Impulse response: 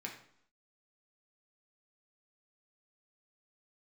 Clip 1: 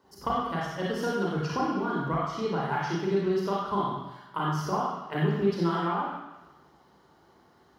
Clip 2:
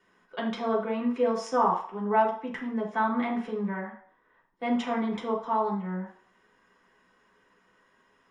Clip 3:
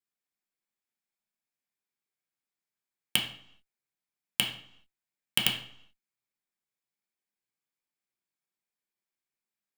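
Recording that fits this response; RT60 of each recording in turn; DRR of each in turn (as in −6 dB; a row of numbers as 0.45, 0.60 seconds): 3; 1.0, 0.50, 0.65 seconds; −5.0, −5.0, −1.0 decibels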